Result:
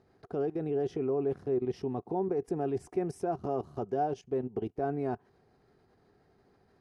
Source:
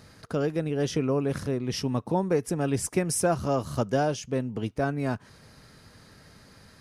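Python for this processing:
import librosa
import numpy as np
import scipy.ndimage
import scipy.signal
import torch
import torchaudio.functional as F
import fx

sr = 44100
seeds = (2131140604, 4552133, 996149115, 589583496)

y = fx.lowpass(x, sr, hz=1700.0, slope=6)
y = fx.level_steps(y, sr, step_db=16)
y = fx.small_body(y, sr, hz=(390.0, 730.0), ring_ms=35, db=15)
y = y * librosa.db_to_amplitude(-6.0)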